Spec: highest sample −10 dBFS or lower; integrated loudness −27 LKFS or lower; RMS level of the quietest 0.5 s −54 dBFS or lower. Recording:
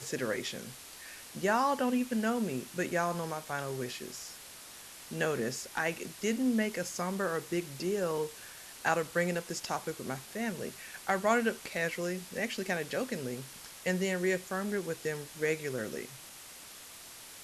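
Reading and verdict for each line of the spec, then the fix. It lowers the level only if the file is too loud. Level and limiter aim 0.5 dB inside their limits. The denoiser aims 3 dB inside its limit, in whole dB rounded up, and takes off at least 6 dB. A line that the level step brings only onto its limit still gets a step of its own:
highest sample −13.0 dBFS: in spec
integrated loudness −33.5 LKFS: in spec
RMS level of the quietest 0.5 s −50 dBFS: out of spec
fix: broadband denoise 7 dB, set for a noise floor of −50 dBFS

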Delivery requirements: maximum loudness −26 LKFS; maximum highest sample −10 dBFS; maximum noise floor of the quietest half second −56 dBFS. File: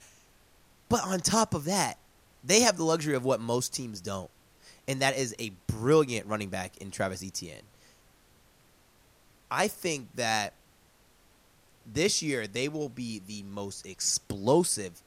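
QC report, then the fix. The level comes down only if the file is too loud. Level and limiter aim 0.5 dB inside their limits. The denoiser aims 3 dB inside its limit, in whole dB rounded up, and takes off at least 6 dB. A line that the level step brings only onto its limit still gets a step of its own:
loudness −29.0 LKFS: in spec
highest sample −7.5 dBFS: out of spec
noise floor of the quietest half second −62 dBFS: in spec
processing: brickwall limiter −10.5 dBFS

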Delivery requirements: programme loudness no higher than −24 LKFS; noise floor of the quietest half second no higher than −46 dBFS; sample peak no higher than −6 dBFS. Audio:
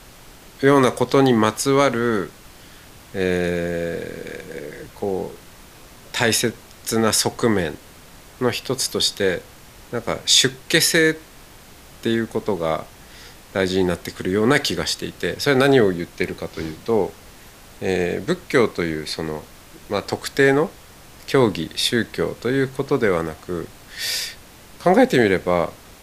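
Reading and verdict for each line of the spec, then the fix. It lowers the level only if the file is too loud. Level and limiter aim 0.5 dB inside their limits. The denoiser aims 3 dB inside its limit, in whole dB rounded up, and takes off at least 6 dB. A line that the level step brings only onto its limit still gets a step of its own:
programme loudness −20.5 LKFS: out of spec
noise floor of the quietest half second −44 dBFS: out of spec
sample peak −2.0 dBFS: out of spec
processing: level −4 dB
brickwall limiter −6.5 dBFS

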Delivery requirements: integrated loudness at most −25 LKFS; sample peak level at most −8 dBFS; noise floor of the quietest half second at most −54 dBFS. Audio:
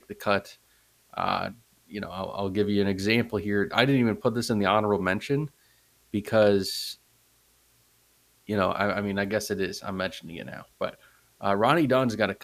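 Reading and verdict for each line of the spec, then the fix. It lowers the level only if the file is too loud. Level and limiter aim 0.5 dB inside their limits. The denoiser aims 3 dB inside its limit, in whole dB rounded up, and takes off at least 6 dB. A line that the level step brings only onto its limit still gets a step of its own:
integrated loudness −26.5 LKFS: in spec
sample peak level −4.0 dBFS: out of spec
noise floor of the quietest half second −64 dBFS: in spec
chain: brickwall limiter −8.5 dBFS

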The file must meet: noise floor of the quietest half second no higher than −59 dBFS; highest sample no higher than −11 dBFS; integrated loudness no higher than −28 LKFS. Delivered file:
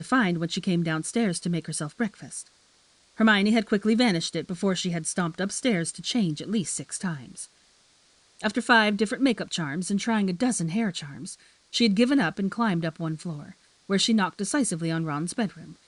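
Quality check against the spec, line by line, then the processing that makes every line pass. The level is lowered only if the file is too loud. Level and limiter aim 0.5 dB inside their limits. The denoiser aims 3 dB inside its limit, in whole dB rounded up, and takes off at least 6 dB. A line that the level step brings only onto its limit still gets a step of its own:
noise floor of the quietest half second −61 dBFS: in spec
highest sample −6.0 dBFS: out of spec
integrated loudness −25.5 LKFS: out of spec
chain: level −3 dB
brickwall limiter −11.5 dBFS

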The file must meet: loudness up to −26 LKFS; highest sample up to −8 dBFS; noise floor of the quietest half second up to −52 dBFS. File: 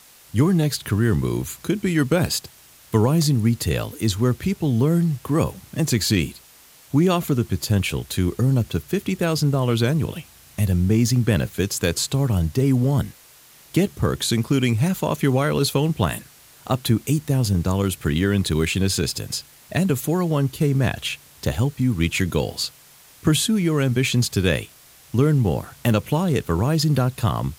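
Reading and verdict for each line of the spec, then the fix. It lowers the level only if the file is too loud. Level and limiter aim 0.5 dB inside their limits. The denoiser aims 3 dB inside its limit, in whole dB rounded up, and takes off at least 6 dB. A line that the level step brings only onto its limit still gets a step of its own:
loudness −21.5 LKFS: out of spec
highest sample −4.0 dBFS: out of spec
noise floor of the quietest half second −50 dBFS: out of spec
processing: level −5 dB

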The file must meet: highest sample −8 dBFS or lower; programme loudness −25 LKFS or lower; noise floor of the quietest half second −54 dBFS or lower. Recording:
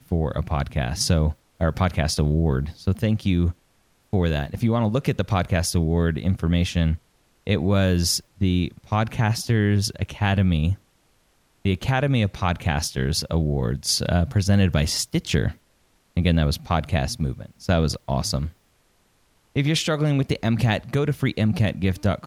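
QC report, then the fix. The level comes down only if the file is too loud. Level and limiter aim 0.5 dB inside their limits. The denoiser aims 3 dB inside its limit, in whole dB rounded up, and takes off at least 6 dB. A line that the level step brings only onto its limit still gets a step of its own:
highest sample −7.0 dBFS: out of spec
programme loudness −23.0 LKFS: out of spec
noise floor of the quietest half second −63 dBFS: in spec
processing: level −2.5 dB

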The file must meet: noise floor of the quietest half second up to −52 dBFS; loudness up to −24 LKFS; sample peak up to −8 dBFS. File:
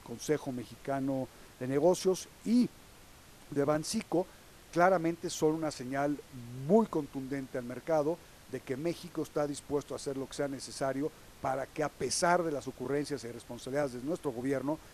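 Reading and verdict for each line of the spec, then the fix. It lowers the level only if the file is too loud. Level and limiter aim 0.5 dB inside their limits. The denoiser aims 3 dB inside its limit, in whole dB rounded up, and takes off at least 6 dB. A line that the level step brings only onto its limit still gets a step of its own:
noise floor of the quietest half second −55 dBFS: in spec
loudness −33.5 LKFS: in spec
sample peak −12.0 dBFS: in spec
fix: no processing needed

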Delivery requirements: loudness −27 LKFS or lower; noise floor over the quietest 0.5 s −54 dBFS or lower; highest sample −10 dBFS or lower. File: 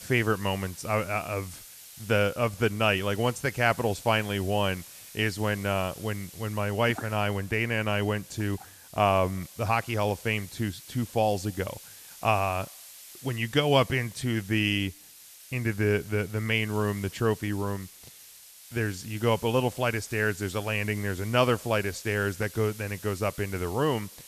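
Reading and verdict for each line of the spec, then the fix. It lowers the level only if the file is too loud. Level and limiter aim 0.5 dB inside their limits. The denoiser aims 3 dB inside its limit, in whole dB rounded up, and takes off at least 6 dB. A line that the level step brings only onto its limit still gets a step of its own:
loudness −28.0 LKFS: in spec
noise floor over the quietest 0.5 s −51 dBFS: out of spec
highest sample −8.0 dBFS: out of spec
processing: broadband denoise 6 dB, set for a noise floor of −51 dBFS
brickwall limiter −10.5 dBFS

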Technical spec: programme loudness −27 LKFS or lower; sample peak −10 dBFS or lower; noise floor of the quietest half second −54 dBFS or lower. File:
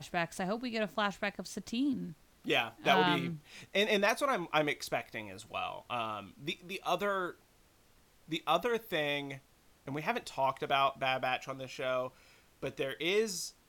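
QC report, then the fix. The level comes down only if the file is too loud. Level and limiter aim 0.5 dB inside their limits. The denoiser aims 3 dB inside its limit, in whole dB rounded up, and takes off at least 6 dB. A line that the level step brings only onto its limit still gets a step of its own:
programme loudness −33.5 LKFS: in spec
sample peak −13.5 dBFS: in spec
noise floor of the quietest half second −65 dBFS: in spec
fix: no processing needed

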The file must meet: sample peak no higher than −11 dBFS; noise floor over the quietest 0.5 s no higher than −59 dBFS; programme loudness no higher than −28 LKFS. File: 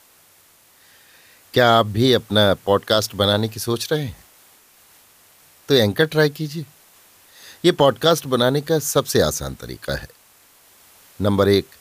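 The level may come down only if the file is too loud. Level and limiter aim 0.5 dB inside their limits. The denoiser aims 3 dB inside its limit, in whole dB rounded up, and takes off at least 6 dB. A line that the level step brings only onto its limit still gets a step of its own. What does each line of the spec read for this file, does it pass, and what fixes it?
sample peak −3.0 dBFS: out of spec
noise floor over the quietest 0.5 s −54 dBFS: out of spec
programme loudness −18.5 LKFS: out of spec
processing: level −10 dB

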